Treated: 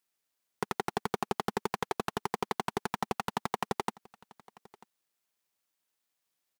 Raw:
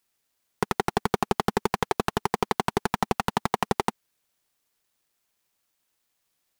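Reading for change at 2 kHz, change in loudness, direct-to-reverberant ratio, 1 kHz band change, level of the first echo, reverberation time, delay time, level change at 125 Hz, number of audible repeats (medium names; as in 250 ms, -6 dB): -7.0 dB, -7.5 dB, no reverb, -7.0 dB, -23.5 dB, no reverb, 942 ms, -10.0 dB, 1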